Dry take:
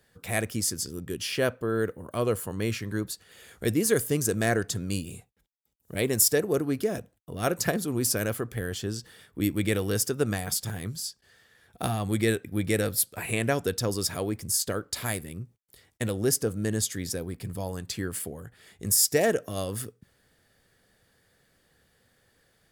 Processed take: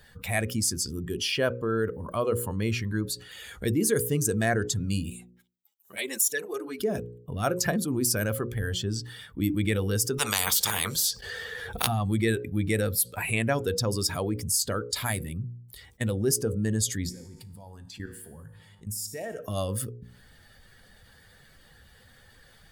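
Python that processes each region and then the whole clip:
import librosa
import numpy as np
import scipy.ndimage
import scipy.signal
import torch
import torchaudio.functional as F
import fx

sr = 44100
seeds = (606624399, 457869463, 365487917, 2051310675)

y = fx.chain(x, sr, fx.highpass(hz=1000.0, slope=6),
    fx.env_flanger(rest_ms=10.9, full_db=-19.5), at=(5.1, 6.8))
y = fx.chain(y, sr, fx.peak_eq(hz=460.0, db=12.5, octaves=0.42),
    fx.notch(hz=280.0, q=5.3),
    fx.spectral_comp(ratio=4.0), at=(10.18, 11.87))
y = fx.level_steps(y, sr, step_db=15, at=(17.09, 19.38), fade=0.02)
y = fx.dmg_buzz(y, sr, base_hz=100.0, harmonics=18, level_db=-61.0, tilt_db=-6, odd_only=False, at=(17.09, 19.38), fade=0.02)
y = fx.comb_fb(y, sr, f0_hz=53.0, decay_s=1.1, harmonics='all', damping=0.0, mix_pct=70, at=(17.09, 19.38), fade=0.02)
y = fx.bin_expand(y, sr, power=1.5)
y = fx.hum_notches(y, sr, base_hz=60, count=9)
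y = fx.env_flatten(y, sr, amount_pct=50)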